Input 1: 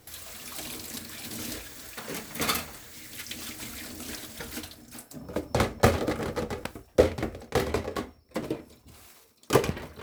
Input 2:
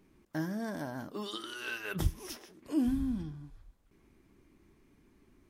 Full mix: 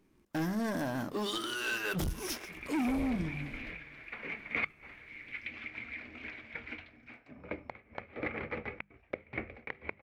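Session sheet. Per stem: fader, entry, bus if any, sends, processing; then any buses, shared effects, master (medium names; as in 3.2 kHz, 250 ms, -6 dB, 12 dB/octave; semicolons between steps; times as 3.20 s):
+3.0 dB, 2.15 s, no send, no echo send, inverted gate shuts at -16 dBFS, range -25 dB; four-pole ladder low-pass 2.4 kHz, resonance 80%
+0.5 dB, 0.00 s, no send, echo send -22 dB, waveshaping leveller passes 2; saturation -29.5 dBFS, distortion -9 dB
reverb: none
echo: delay 534 ms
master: hum notches 50/100/150/200 Hz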